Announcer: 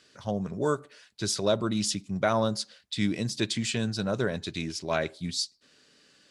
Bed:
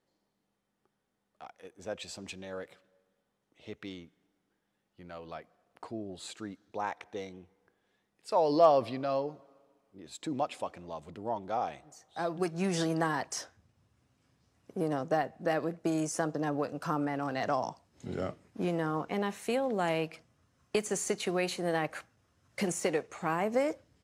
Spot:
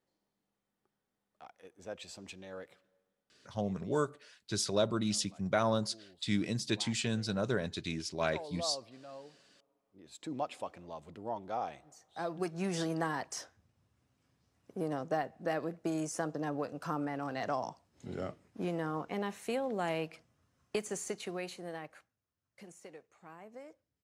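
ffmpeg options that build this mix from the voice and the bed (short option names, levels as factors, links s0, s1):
-filter_complex "[0:a]adelay=3300,volume=0.596[s0];[1:a]volume=2.66,afade=t=out:st=2.88:d=0.97:silence=0.237137,afade=t=in:st=9.31:d=1.15:silence=0.211349,afade=t=out:st=20.58:d=1.63:silence=0.141254[s1];[s0][s1]amix=inputs=2:normalize=0"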